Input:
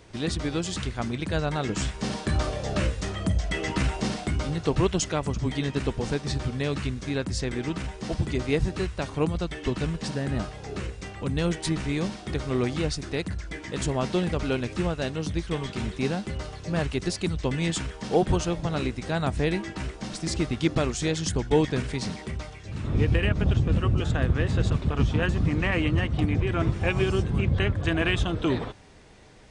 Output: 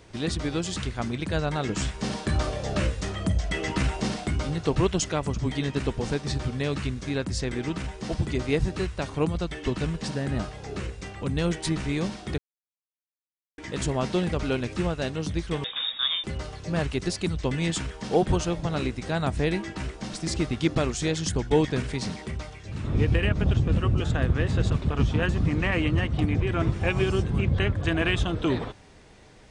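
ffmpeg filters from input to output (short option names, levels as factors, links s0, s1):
-filter_complex "[0:a]asettb=1/sr,asplit=3[s0][s1][s2];[s0]atrim=end=15.644[s3];[s1]atrim=start=15.64:end=16.24,asetpts=PTS-STARTPTS,afade=t=in:d=0.004:c=qsin,afade=t=out:st=0.596:d=0.004:c=qsin,lowpass=f=3200:t=q:w=0.5098,lowpass=f=3200:t=q:w=0.6013,lowpass=f=3200:t=q:w=0.9,lowpass=f=3200:t=q:w=2.563,afreqshift=-3800[s4];[s2]atrim=start=16.236[s5];[s3][s4]acrossfade=d=0.004:c1=hsin:c2=qsin[s6];[s6][s5]acrossfade=d=0.004:c1=qsin:c2=hsin,asplit=3[s7][s8][s9];[s7]atrim=end=12.38,asetpts=PTS-STARTPTS,afade=t=out:st=12.376:d=0.004:c=hsin[s10];[s8]atrim=start=12.38:end=13.58,asetpts=PTS-STARTPTS,volume=0[s11];[s9]atrim=start=13.58,asetpts=PTS-STARTPTS,afade=t=in:d=0.004:c=hsin[s12];[s10][s11][s12]concat=n=3:v=0:a=1"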